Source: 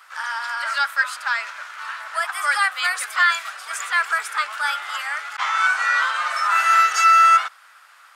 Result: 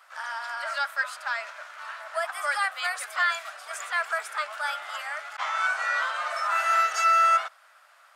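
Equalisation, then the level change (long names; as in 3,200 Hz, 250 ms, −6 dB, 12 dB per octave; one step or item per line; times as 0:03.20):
parametric band 630 Hz +13.5 dB 0.5 octaves
−8.0 dB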